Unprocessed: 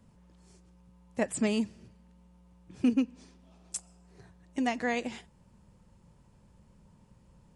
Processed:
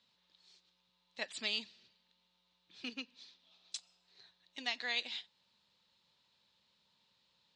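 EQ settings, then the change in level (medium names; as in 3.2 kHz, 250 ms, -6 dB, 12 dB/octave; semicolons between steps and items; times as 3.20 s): band-pass filter 3.9 kHz, Q 6.7; distance through air 95 m; +17.5 dB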